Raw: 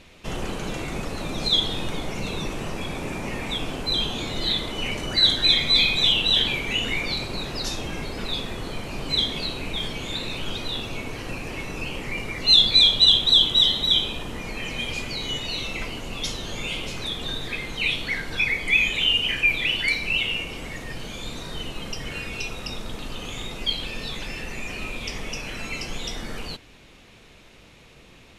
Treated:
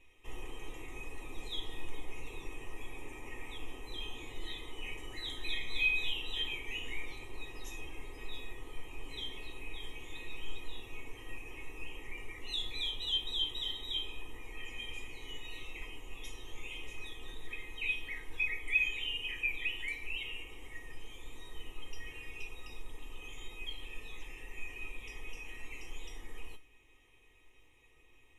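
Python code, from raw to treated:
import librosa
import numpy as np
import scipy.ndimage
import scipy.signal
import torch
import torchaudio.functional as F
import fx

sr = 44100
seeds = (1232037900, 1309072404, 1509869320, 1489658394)

y = fx.peak_eq(x, sr, hz=1600.0, db=-5.0, octaves=0.23)
y = fx.fixed_phaser(y, sr, hz=930.0, stages=8)
y = fx.comb_fb(y, sr, f0_hz=630.0, decay_s=0.23, harmonics='all', damping=0.0, mix_pct=90)
y = F.gain(torch.from_numpy(y), 2.5).numpy()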